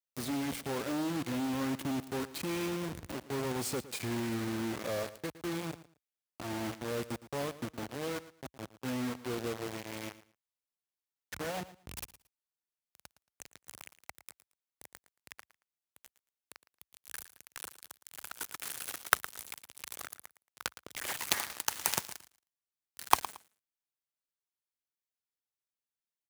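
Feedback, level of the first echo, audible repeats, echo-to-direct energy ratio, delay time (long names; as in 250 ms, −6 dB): 21%, −16.0 dB, 2, −16.0 dB, 113 ms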